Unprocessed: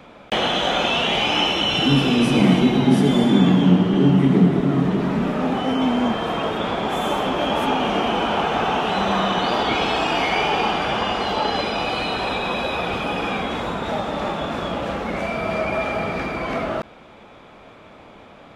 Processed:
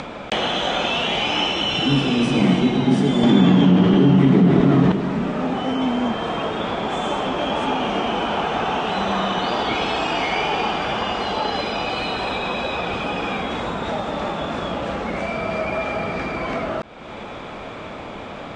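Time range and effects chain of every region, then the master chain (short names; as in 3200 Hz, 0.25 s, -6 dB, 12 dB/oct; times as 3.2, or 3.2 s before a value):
3.23–4.92 LPF 7100 Hz + fast leveller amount 70%
whole clip: steep low-pass 9000 Hz 96 dB/oct; upward compressor, threshold -19 dBFS; gain -1.5 dB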